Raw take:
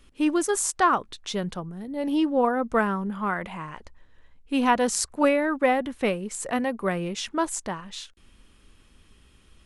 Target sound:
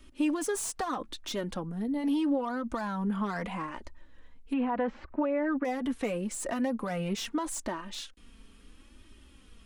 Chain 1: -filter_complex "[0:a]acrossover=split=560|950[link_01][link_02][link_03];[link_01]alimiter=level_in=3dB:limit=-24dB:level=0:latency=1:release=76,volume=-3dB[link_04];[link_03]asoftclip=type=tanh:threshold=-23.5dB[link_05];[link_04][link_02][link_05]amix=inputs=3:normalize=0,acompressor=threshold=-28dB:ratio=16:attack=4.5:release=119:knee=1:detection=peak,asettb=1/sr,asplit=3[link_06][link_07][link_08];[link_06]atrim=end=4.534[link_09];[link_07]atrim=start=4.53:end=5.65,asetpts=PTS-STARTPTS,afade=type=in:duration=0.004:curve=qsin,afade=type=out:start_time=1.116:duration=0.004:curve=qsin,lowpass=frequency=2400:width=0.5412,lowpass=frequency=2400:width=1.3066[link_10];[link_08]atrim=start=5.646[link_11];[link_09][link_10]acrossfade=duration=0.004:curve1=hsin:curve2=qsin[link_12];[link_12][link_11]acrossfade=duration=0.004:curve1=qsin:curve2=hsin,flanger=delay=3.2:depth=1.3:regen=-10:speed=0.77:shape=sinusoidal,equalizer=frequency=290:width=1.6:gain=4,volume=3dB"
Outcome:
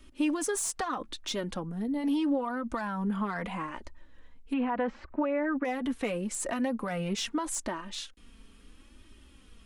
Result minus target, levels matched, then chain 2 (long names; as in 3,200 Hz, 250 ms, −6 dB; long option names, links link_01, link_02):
soft clipping: distortion −7 dB
-filter_complex "[0:a]acrossover=split=560|950[link_01][link_02][link_03];[link_01]alimiter=level_in=3dB:limit=-24dB:level=0:latency=1:release=76,volume=-3dB[link_04];[link_03]asoftclip=type=tanh:threshold=-32dB[link_05];[link_04][link_02][link_05]amix=inputs=3:normalize=0,acompressor=threshold=-28dB:ratio=16:attack=4.5:release=119:knee=1:detection=peak,asettb=1/sr,asplit=3[link_06][link_07][link_08];[link_06]atrim=end=4.534[link_09];[link_07]atrim=start=4.53:end=5.65,asetpts=PTS-STARTPTS,afade=type=in:duration=0.004:curve=qsin,afade=type=out:start_time=1.116:duration=0.004:curve=qsin,lowpass=frequency=2400:width=0.5412,lowpass=frequency=2400:width=1.3066[link_10];[link_08]atrim=start=5.646[link_11];[link_09][link_10]acrossfade=duration=0.004:curve1=hsin:curve2=qsin[link_12];[link_12][link_11]acrossfade=duration=0.004:curve1=qsin:curve2=hsin,flanger=delay=3.2:depth=1.3:regen=-10:speed=0.77:shape=sinusoidal,equalizer=frequency=290:width=1.6:gain=4,volume=3dB"